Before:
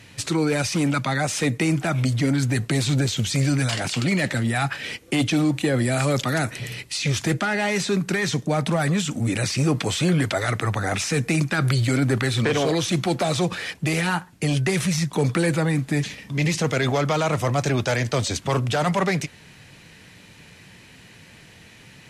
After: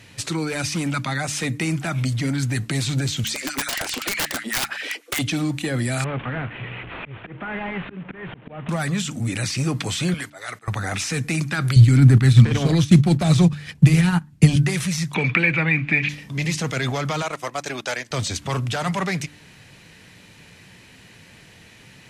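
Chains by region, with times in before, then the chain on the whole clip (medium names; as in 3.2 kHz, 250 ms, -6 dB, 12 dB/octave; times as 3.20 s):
3.24–5.19 s: high-pass 220 Hz 24 dB/octave + LFO high-pass sine 7.9 Hz 280–2100 Hz + integer overflow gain 16.5 dB
6.04–8.69 s: one-bit delta coder 16 kbps, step -29.5 dBFS + slow attack 308 ms + transformer saturation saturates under 470 Hz
10.14–10.68 s: high-pass 900 Hz 6 dB/octave + slow attack 291 ms
11.76–14.56 s: tone controls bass +14 dB, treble 0 dB + transient shaper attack +6 dB, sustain -11 dB
15.14–16.09 s: resonant low-pass 2.4 kHz, resonance Q 8.1 + three bands compressed up and down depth 70%
17.22–18.11 s: high-pass 340 Hz + transient shaper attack +1 dB, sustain -11 dB
whole clip: de-hum 73.69 Hz, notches 4; dynamic bell 490 Hz, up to -6 dB, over -36 dBFS, Q 0.85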